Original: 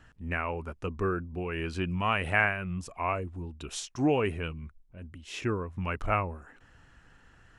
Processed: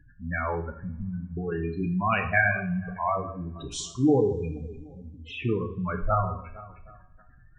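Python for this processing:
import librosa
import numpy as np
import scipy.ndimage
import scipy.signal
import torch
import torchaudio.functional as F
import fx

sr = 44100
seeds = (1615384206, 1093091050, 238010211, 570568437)

p1 = x + fx.echo_alternate(x, sr, ms=153, hz=1600.0, feedback_pct=63, wet_db=-11, dry=0)
p2 = fx.spec_gate(p1, sr, threshold_db=-10, keep='strong')
p3 = fx.brickwall_bandstop(p2, sr, low_hz=270.0, high_hz=1500.0, at=(0.7, 1.37))
p4 = fx.rev_double_slope(p3, sr, seeds[0], early_s=0.48, late_s=2.1, knee_db=-26, drr_db=3.5)
y = F.gain(torch.from_numpy(p4), 3.5).numpy()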